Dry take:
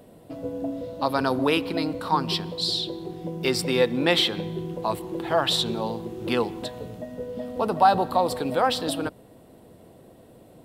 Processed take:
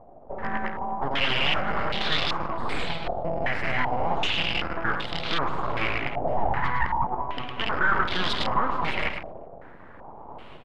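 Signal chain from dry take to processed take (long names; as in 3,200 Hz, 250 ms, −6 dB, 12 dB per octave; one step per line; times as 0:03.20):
loose part that buzzes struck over −32 dBFS, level −14 dBFS
automatic gain control gain up to 9 dB
sample-and-hold tremolo 3.5 Hz, depth 55%
brickwall limiter −13 dBFS, peak gain reduction 10 dB
0:06.37–0:07.04: high-pass with resonance 430 Hz, resonance Q 5.3
soft clipping −17 dBFS, distortion −12 dB
on a send: multi-tap delay 52/107/229/381 ms −17.5/−7/−15/−20 dB
on the sum: full-wave rectification
low-pass on a step sequencer 2.6 Hz 680–3,700 Hz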